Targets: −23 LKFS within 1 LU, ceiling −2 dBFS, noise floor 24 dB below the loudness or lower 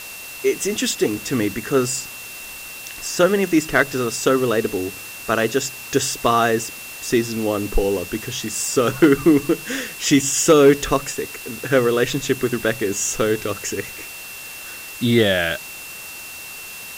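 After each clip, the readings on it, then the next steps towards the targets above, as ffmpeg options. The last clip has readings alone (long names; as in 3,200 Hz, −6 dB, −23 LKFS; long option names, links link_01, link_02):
interfering tone 2,700 Hz; level of the tone −36 dBFS; background noise floor −35 dBFS; target noise floor −44 dBFS; integrated loudness −19.5 LKFS; sample peak −3.0 dBFS; target loudness −23.0 LKFS
→ -af "bandreject=frequency=2700:width=30"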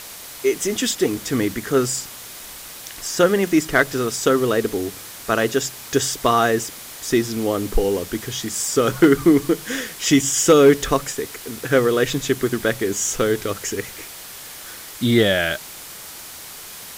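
interfering tone none found; background noise floor −37 dBFS; target noise floor −44 dBFS
→ -af "afftdn=noise_reduction=7:noise_floor=-37"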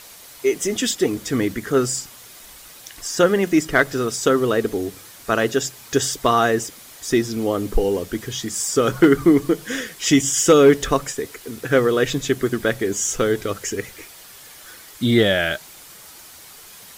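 background noise floor −43 dBFS; target noise floor −44 dBFS
→ -af "afftdn=noise_reduction=6:noise_floor=-43"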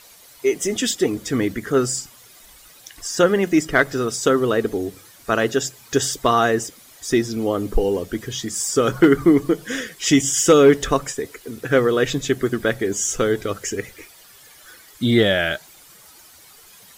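background noise floor −48 dBFS; integrated loudness −20.0 LKFS; sample peak −3.5 dBFS; target loudness −23.0 LKFS
→ -af "volume=-3dB"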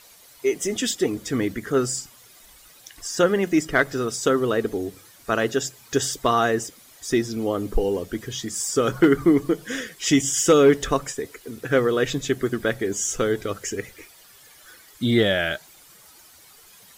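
integrated loudness −23.0 LKFS; sample peak −6.5 dBFS; background noise floor −51 dBFS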